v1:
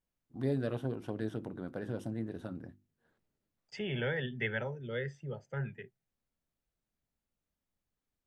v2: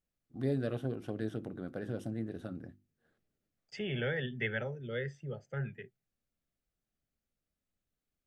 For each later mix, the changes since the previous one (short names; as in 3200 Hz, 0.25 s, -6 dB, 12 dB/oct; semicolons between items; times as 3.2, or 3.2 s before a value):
master: add bell 950 Hz -11.5 dB 0.23 oct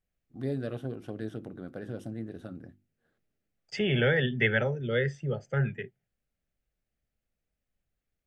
second voice +9.5 dB